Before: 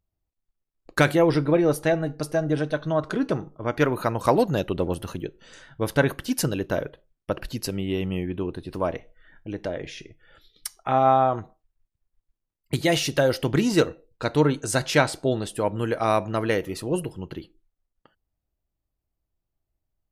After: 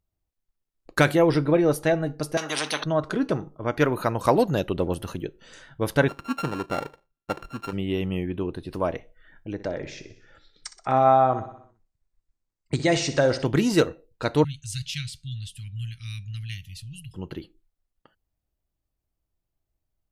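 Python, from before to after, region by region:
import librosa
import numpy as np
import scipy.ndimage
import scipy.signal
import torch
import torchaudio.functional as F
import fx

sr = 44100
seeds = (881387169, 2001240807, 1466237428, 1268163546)

y = fx.chain(x, sr, fx.highpass(hz=270.0, slope=24),
    fx.spectral_comp(ratio=4.0), at=(2.37, 2.84))
y = fx.chain(y, sr, fx.sample_sort(block=32),
    fx.lowpass(hz=1500.0, slope=6),
    fx.low_shelf(hz=140.0, db=-10.0), at=(6.08, 7.73))
y = fx.chain(y, sr, fx.brickwall_lowpass(high_hz=8800.0),
    fx.peak_eq(hz=3100.0, db=-7.0, octaves=0.36),
    fx.echo_feedback(ms=62, feedback_pct=59, wet_db=-13.5), at=(9.53, 13.46))
y = fx.chain(y, sr, fx.ellip_bandstop(low_hz=120.0, high_hz=2900.0, order=3, stop_db=70),
    fx.high_shelf(hz=6000.0, db=-10.0), at=(14.44, 17.14))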